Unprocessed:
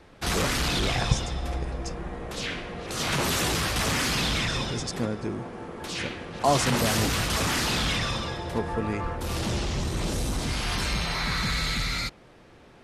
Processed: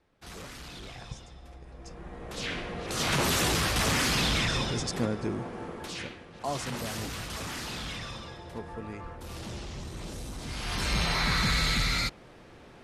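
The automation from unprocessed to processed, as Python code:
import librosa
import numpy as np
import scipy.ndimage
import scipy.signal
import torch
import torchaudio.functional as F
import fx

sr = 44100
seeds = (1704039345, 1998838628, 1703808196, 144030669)

y = fx.gain(x, sr, db=fx.line((1.6, -18.0), (1.98, -9.5), (2.6, -0.5), (5.69, -0.5), (6.25, -11.0), (10.37, -11.0), (11.01, 1.0)))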